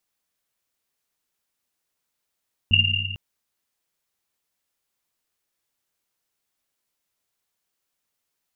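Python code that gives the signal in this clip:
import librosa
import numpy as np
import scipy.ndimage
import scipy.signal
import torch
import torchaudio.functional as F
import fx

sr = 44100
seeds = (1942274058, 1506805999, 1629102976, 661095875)

y = fx.risset_drum(sr, seeds[0], length_s=0.45, hz=97.0, decay_s=2.45, noise_hz=2800.0, noise_width_hz=130.0, noise_pct=65)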